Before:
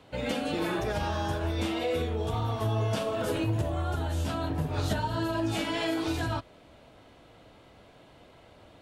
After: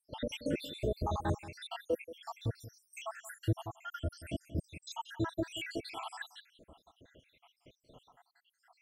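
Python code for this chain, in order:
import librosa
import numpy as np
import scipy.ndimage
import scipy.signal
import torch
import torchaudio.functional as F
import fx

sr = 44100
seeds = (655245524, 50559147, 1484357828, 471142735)

p1 = fx.spec_dropout(x, sr, seeds[0], share_pct=85)
y = p1 + fx.echo_single(p1, sr, ms=180, db=-15.5, dry=0)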